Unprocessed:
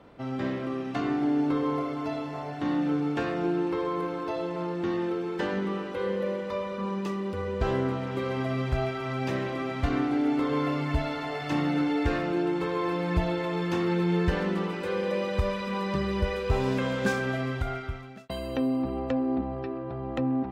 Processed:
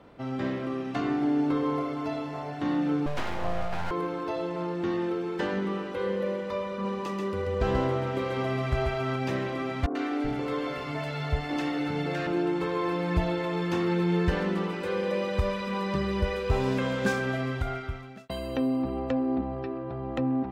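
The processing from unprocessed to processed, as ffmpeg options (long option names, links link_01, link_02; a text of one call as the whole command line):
ffmpeg -i in.wav -filter_complex "[0:a]asettb=1/sr,asplit=3[link_01][link_02][link_03];[link_01]atrim=end=3.064[link_04];[link_02]atrim=start=3.06:end=3.91,asetpts=PTS-STARTPTS,afade=type=in:duration=0.004:curve=qsin,afade=type=out:start_time=0.846:duration=0.004:curve=qsin,aeval=exprs='abs(val(0))':channel_layout=same[link_05];[link_03]atrim=start=3.906[link_06];[link_04][link_05]acrossfade=duration=0.004:curve1=hsin:curve2=qsin[link_07];[link_07][link_06]acrossfade=duration=0.004:curve1=qsin:curve2=hsin,asettb=1/sr,asplit=3[link_08][link_09][link_10];[link_08]atrim=end=6.714[link_11];[link_09]atrim=start=6.71:end=9.16,asetpts=PTS-STARTPTS,afade=type=in:duration=0.004:curve=qsin,afade=type=out:start_time=2.446:duration=0.004:curve=qsin,aecho=1:1:136:0.668,atrim=end_sample=108045[link_12];[link_10]atrim=start=9.156[link_13];[link_11][link_12]acrossfade=duration=0.004:curve1=hsin:curve2=qsin[link_14];[link_14][link_13]acrossfade=duration=0.004:curve1=qsin:curve2=hsin,asettb=1/sr,asplit=3[link_15][link_16][link_17];[link_15]atrim=end=9.864[link_18];[link_16]atrim=start=9.86:end=12.27,asetpts=PTS-STARTPTS,afade=type=in:duration=0.004:curve=qsin,afade=type=out:start_time=2.406:duration=0.004:curve=qsin,acrossover=split=250|960[link_19][link_20][link_21];[link_21]adelay=90[link_22];[link_19]adelay=380[link_23];[link_23][link_20][link_22]amix=inputs=3:normalize=0,atrim=end_sample=106281[link_24];[link_17]atrim=start=12.266[link_25];[link_18][link_24]acrossfade=duration=0.004:curve1=hsin:curve2=qsin[link_26];[link_26][link_25]acrossfade=duration=0.004:curve1=qsin:curve2=hsin" out.wav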